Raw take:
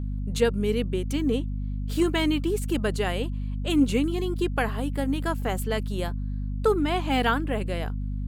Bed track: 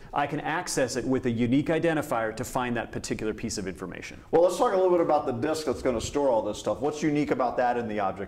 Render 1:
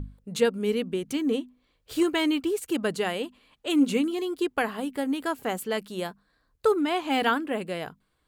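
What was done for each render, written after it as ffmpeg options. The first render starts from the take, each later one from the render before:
-af "bandreject=f=50:t=h:w=6,bandreject=f=100:t=h:w=6,bandreject=f=150:t=h:w=6,bandreject=f=200:t=h:w=6,bandreject=f=250:t=h:w=6"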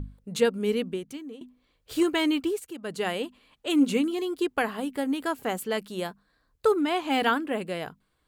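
-filter_complex "[0:a]asplit=4[a][b][c][d];[a]atrim=end=1.41,asetpts=PTS-STARTPTS,afade=t=out:st=0.86:d=0.55:c=qua:silence=0.133352[e];[b]atrim=start=1.41:end=2.74,asetpts=PTS-STARTPTS,afade=t=in:d=0.004:c=hsin:silence=0.133352,afade=t=out:st=1.06:d=0.27:silence=0.237137[f];[c]atrim=start=2.74:end=2.81,asetpts=PTS-STARTPTS,volume=-12.5dB[g];[d]atrim=start=2.81,asetpts=PTS-STARTPTS,afade=t=in:d=0.27:silence=0.237137[h];[e][f][g][h]concat=n=4:v=0:a=1"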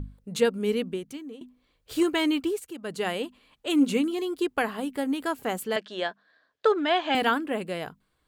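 -filter_complex "[0:a]asettb=1/sr,asplit=3[a][b][c];[a]atrim=end=5.764[d];[b]atrim=start=5.76:end=7.15,asetpts=PTS-STARTPTS,afade=t=in:d=0.004:c=qsin,afade=t=out:st=1.386:d=0.004:c=qsin,highpass=310,equalizer=f=640:t=q:w=4:g=8,equalizer=f=1.7k:t=q:w=4:g=10,equalizer=f=3.3k:t=q:w=4:g=7,lowpass=f=6.1k:w=0.5412,lowpass=f=6.1k:w=1.3066[e];[c]atrim=start=7.146[f];[d][e]acrossfade=d=0.004:c1=hsin:c2=qsin[g];[g][f]acrossfade=d=0.004:c1=qsin:c2=hsin"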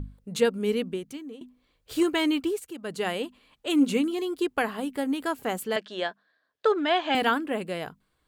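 -filter_complex "[0:a]asplit=3[a][b][c];[a]atrim=end=6.37,asetpts=PTS-STARTPTS,afade=t=out:st=6.04:d=0.33:silence=0.398107[d];[b]atrim=start=6.37:end=6.41,asetpts=PTS-STARTPTS,volume=-8dB[e];[c]atrim=start=6.41,asetpts=PTS-STARTPTS,afade=t=in:d=0.33:silence=0.398107[f];[d][e][f]concat=n=3:v=0:a=1"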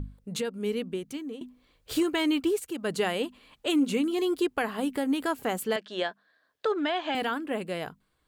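-af "alimiter=limit=-22dB:level=0:latency=1:release=392,dynaudnorm=f=260:g=9:m=4.5dB"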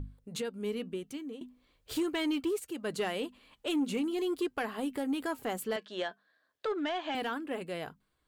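-af "flanger=delay=2.3:depth=1.4:regen=-82:speed=0.4:shape=triangular,asoftclip=type=tanh:threshold=-23.5dB"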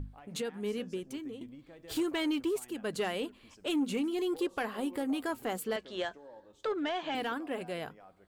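-filter_complex "[1:a]volume=-28dB[a];[0:a][a]amix=inputs=2:normalize=0"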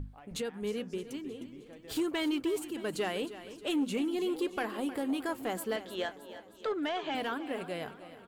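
-af "aecho=1:1:311|622|933|1244|1555:0.2|0.106|0.056|0.0297|0.0157"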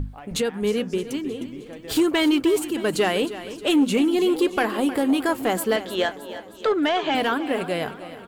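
-af "volume=12dB"

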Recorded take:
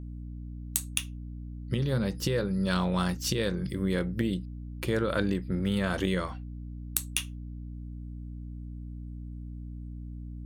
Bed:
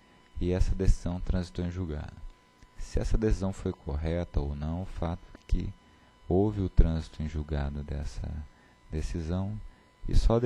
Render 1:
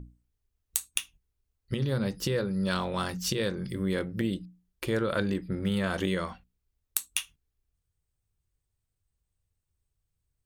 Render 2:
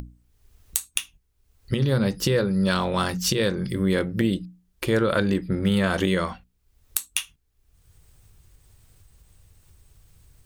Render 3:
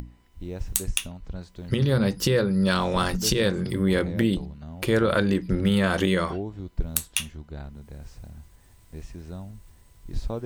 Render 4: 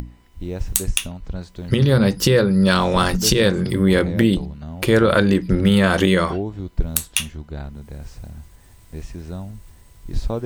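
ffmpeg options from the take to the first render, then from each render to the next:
-af "bandreject=f=60:t=h:w=6,bandreject=f=120:t=h:w=6,bandreject=f=180:t=h:w=6,bandreject=f=240:t=h:w=6,bandreject=f=300:t=h:w=6"
-filter_complex "[0:a]asplit=2[a][b];[b]alimiter=limit=-17dB:level=0:latency=1:release=142,volume=2dB[c];[a][c]amix=inputs=2:normalize=0,acompressor=mode=upward:threshold=-37dB:ratio=2.5"
-filter_complex "[1:a]volume=-6.5dB[a];[0:a][a]amix=inputs=2:normalize=0"
-af "volume=6.5dB,alimiter=limit=-1dB:level=0:latency=1"

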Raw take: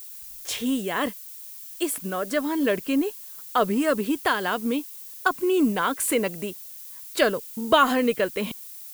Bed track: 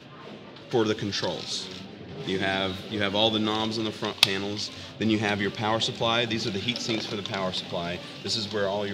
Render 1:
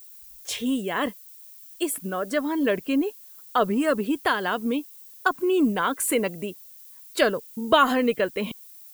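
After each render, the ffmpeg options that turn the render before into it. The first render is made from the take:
-af "afftdn=nr=8:nf=-41"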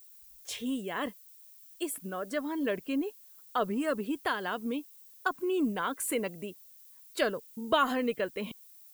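-af "volume=-8dB"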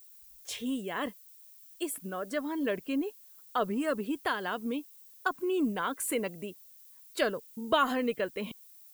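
-af anull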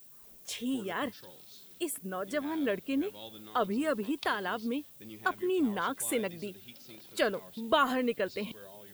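-filter_complex "[1:a]volume=-24dB[a];[0:a][a]amix=inputs=2:normalize=0"

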